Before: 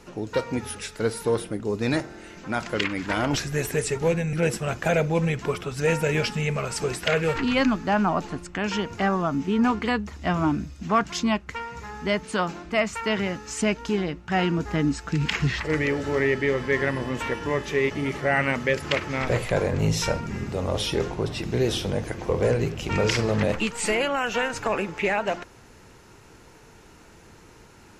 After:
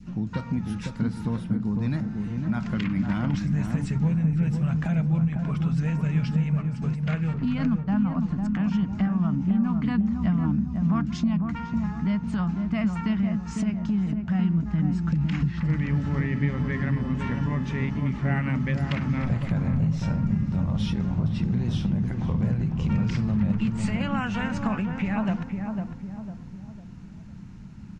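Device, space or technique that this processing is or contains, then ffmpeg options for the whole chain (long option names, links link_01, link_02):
jukebox: -filter_complex "[0:a]lowpass=6200,lowshelf=frequency=290:width_type=q:width=3:gain=13.5,acompressor=threshold=-17dB:ratio=4,asplit=3[link_01][link_02][link_03];[link_01]afade=type=out:start_time=6.61:duration=0.02[link_04];[link_02]agate=range=-16dB:threshold=-19dB:ratio=16:detection=peak,afade=type=in:start_time=6.61:duration=0.02,afade=type=out:start_time=7.96:duration=0.02[link_05];[link_03]afade=type=in:start_time=7.96:duration=0.02[link_06];[link_04][link_05][link_06]amix=inputs=3:normalize=0,adynamicequalizer=threshold=0.00891:dfrequency=1000:dqfactor=0.81:tfrequency=1000:tqfactor=0.81:attack=5:release=100:ratio=0.375:range=3:mode=boostabove:tftype=bell,asplit=2[link_07][link_08];[link_08]adelay=502,lowpass=frequency=830:poles=1,volume=-3.5dB,asplit=2[link_09][link_10];[link_10]adelay=502,lowpass=frequency=830:poles=1,volume=0.49,asplit=2[link_11][link_12];[link_12]adelay=502,lowpass=frequency=830:poles=1,volume=0.49,asplit=2[link_13][link_14];[link_14]adelay=502,lowpass=frequency=830:poles=1,volume=0.49,asplit=2[link_15][link_16];[link_16]adelay=502,lowpass=frequency=830:poles=1,volume=0.49,asplit=2[link_17][link_18];[link_18]adelay=502,lowpass=frequency=830:poles=1,volume=0.49[link_19];[link_07][link_09][link_11][link_13][link_15][link_17][link_19]amix=inputs=7:normalize=0,volume=-7.5dB"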